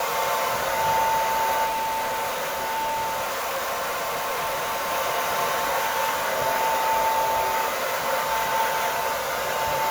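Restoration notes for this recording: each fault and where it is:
0:01.65–0:04.91: clipping −23.5 dBFS

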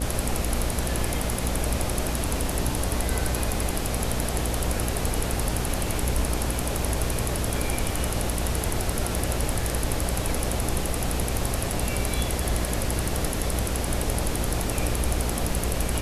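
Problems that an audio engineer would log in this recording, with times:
mains buzz 60 Hz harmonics 12 −30 dBFS

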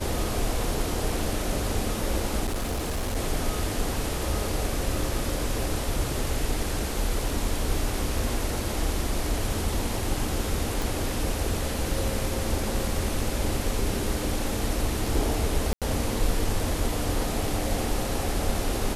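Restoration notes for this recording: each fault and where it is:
0:02.45–0:03.17: clipping −24.5 dBFS
0:10.82: click
0:15.73–0:15.82: drop-out 87 ms

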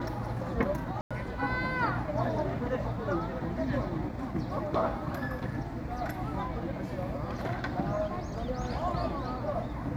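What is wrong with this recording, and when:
0:01.01–0:01.11: drop-out 96 ms

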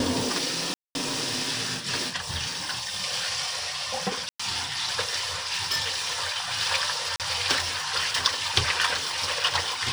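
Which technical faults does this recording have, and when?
0:00.74–0:00.95: drop-out 211 ms
0:04.29–0:04.39: drop-out 105 ms
0:05.36–0:05.91: clipping −21.5 dBFS
0:07.16–0:07.20: drop-out 38 ms

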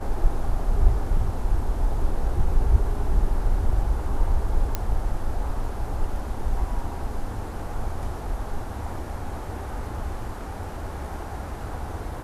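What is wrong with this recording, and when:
0:04.75: click −10 dBFS

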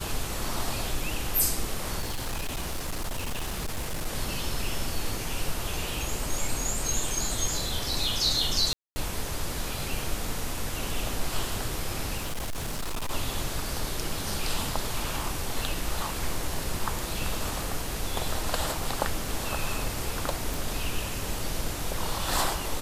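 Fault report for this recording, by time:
0:02.00–0:04.07: clipping −27 dBFS
0:08.73–0:08.96: drop-out 230 ms
0:12.17–0:13.11: clipping −27.5 dBFS
0:20.54: click

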